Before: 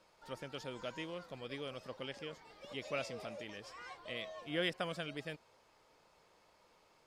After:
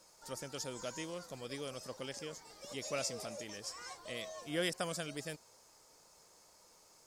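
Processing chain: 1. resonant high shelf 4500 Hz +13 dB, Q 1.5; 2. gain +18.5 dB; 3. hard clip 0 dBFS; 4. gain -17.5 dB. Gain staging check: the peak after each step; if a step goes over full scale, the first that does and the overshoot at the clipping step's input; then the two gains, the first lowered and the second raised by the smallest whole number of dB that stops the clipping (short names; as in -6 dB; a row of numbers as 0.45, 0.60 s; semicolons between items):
-24.0, -5.5, -5.5, -23.0 dBFS; no overload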